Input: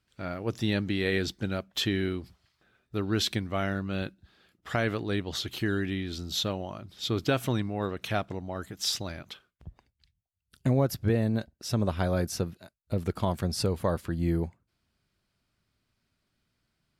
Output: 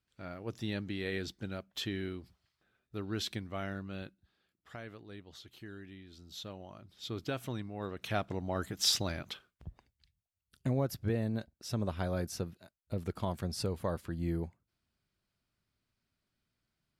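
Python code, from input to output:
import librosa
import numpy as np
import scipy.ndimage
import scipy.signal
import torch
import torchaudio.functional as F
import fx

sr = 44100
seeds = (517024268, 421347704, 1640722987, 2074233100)

y = fx.gain(x, sr, db=fx.line((3.8, -9.0), (4.89, -19.0), (6.09, -19.0), (6.8, -10.5), (7.69, -10.5), (8.53, 1.0), (9.26, 1.0), (10.68, -7.0)))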